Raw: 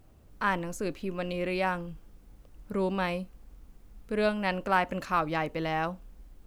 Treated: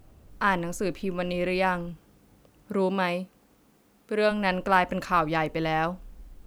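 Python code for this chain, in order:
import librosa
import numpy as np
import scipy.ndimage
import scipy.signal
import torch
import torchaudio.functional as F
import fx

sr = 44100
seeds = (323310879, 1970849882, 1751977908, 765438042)

y = fx.highpass(x, sr, hz=fx.line((1.9, 93.0), (4.3, 260.0)), slope=12, at=(1.9, 4.3), fade=0.02)
y = y * librosa.db_to_amplitude(4.0)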